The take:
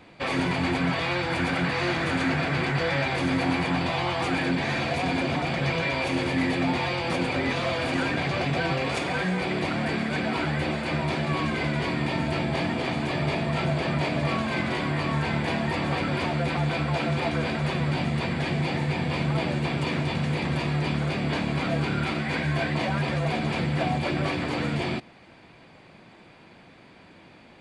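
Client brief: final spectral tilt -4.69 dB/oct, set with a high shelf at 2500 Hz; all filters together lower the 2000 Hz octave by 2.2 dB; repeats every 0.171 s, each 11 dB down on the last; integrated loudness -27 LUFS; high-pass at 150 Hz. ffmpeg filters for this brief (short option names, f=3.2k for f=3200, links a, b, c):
-af "highpass=150,equalizer=f=2k:t=o:g=-7,highshelf=f=2.5k:g=8.5,aecho=1:1:171|342|513:0.282|0.0789|0.0221,volume=-0.5dB"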